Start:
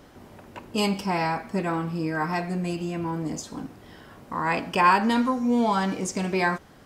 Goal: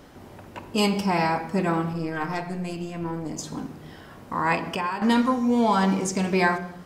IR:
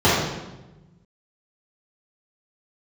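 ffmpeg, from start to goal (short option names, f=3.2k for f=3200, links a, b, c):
-filter_complex "[0:a]asettb=1/sr,asplit=3[a][b][c];[a]atrim=end=1.934[d];[b]atrim=start=1.93:end=3.39,asetpts=PTS-STARTPTS,afade=t=in:d=0.004:c=qsin,afade=t=out:st=1.456:d=0.004:c=qsin,aeval=exprs='(tanh(7.08*val(0)+0.8)-tanh(0.8))/7.08':c=same[e];[c]atrim=start=3.386[f];[d][e]acrossfade=d=0.004:c1=hsin:c2=qsin[g];[g][f]acrossfade=d=0.004:c1=qsin:c2=hsin,asettb=1/sr,asplit=3[h][i][j];[h]atrim=end=4.554[k];[i]atrim=start=4.55:end=5.02,asetpts=PTS-STARTPTS,afade=t=in:d=0.004:c=qsin,afade=t=out:st=0.466:d=0.004:c=qsin,acompressor=threshold=-30dB:ratio=4[l];[j]atrim=start=5.016[m];[k][l]acrossfade=d=0.004:c1=hsin:c2=qsin[n];[n][m]acrossfade=d=0.004:c1=qsin:c2=hsin,asplit=2[o][p];[1:a]atrim=start_sample=2205,afade=t=out:st=0.32:d=0.01,atrim=end_sample=14553,adelay=44[q];[p][q]afir=irnorm=-1:irlink=0,volume=-36.5dB[r];[o][r]amix=inputs=2:normalize=0,volume=2dB"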